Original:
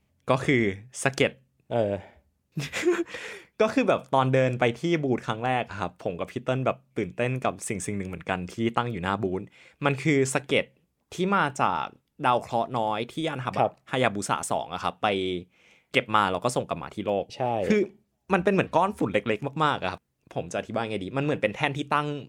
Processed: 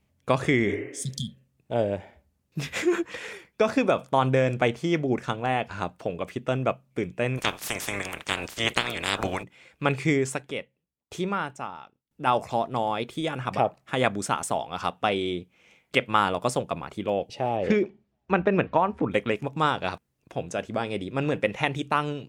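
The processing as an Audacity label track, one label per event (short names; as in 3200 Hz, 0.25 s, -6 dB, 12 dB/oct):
0.710000	1.370000	spectral repair 240–3100 Hz
7.370000	9.420000	spectral limiter ceiling under each frame's peak by 30 dB
10.110000	12.270000	dB-ramp tremolo decaying 1 Hz, depth 21 dB
17.560000	19.100000	LPF 5100 Hz -> 2100 Hz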